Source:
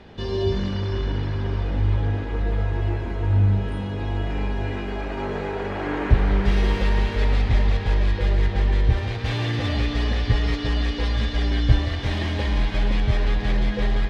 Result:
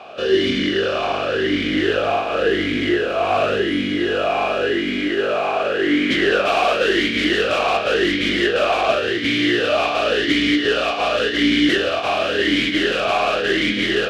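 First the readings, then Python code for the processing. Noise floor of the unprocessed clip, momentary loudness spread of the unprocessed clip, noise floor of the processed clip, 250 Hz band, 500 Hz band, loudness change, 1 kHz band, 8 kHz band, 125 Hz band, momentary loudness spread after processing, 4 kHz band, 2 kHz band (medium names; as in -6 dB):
-29 dBFS, 7 LU, -23 dBFS, +9.0 dB, +12.0 dB, +5.5 dB, +11.5 dB, no reading, -13.5 dB, 3 LU, +12.5 dB, +12.5 dB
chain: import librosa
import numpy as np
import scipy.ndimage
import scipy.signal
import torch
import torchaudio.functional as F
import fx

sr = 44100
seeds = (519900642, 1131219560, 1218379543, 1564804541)

y = fx.spec_flatten(x, sr, power=0.55)
y = fx.fold_sine(y, sr, drive_db=16, ceiling_db=-0.5)
y = fx.vowel_sweep(y, sr, vowels='a-i', hz=0.91)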